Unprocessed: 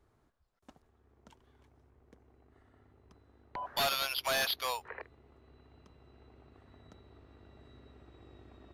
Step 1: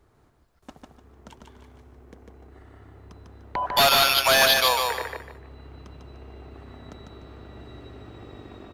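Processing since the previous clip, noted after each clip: level rider gain up to 4 dB; on a send: feedback delay 149 ms, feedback 30%, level -3.5 dB; on the sum: trim +8.5 dB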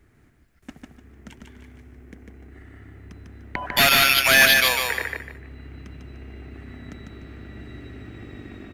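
graphic EQ 250/500/1000/2000/4000 Hz +4/-6/-11/+9/-6 dB; trim +4 dB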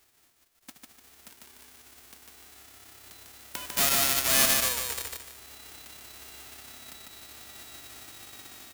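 formants flattened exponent 0.1; trim -7.5 dB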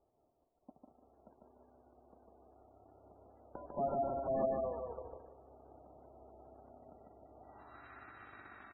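low-pass sweep 640 Hz -> 1.5 kHz, 7.36–7.87 s; speakerphone echo 190 ms, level -8 dB; spectral gate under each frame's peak -20 dB strong; trim -5 dB

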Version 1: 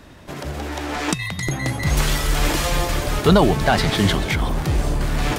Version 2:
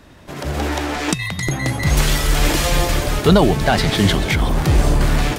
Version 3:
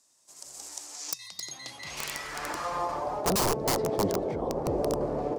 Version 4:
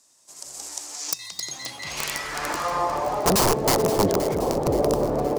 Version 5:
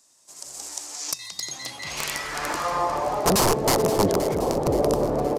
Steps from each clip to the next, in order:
dynamic bell 1.1 kHz, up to -3 dB, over -30 dBFS, Q 1.4; level rider gain up to 11.5 dB; trim -1.5 dB
band-pass sweep 7.6 kHz -> 500 Hz, 0.89–3.61 s; integer overflow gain 18 dB; high-order bell 2.3 kHz -10.5 dB
bit-crushed delay 523 ms, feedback 55%, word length 9-bit, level -12.5 dB; trim +6.5 dB
resampled via 32 kHz

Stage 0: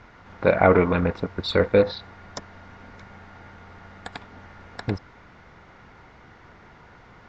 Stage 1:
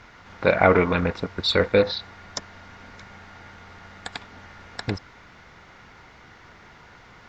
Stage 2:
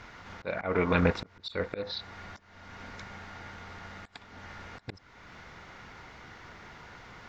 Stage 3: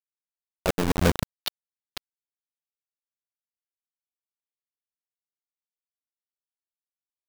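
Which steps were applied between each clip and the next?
treble shelf 2 kHz +10 dB; trim -1.5 dB
slow attack 445 ms
square wave that keeps the level; slow attack 339 ms; bit crusher 5-bit; trim +6 dB

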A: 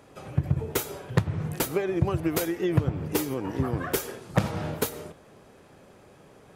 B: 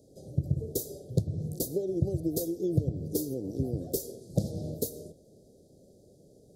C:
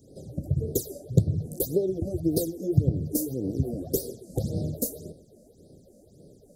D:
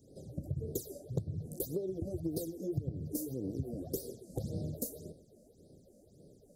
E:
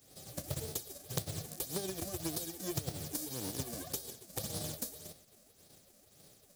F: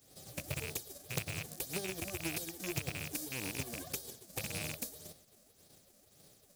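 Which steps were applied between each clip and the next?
inverse Chebyshev band-stop 940–2800 Hz, stop band 40 dB; trim -3.5 dB
phase shifter stages 8, 1.8 Hz, lowest notch 110–2400 Hz; trim +6 dB
compression 3:1, threshold -27 dBFS, peak gain reduction 11 dB; trim -6.5 dB
formants flattened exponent 0.3; trim -2 dB
rattle on loud lows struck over -44 dBFS, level -28 dBFS; trim -1.5 dB

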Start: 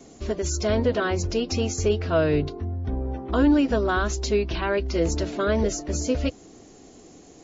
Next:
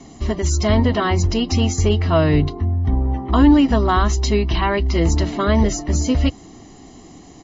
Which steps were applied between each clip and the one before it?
distance through air 56 m; comb 1 ms, depth 61%; trim +6.5 dB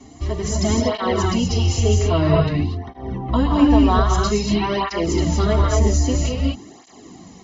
dynamic bell 1.7 kHz, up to -5 dB, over -38 dBFS, Q 1.4; gated-style reverb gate 270 ms rising, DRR -1.5 dB; cancelling through-zero flanger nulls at 0.51 Hz, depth 6.1 ms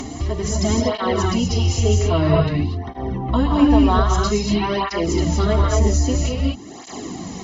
upward compressor, threshold -19 dBFS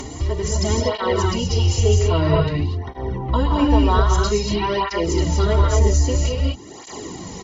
comb 2.1 ms, depth 47%; trim -1 dB

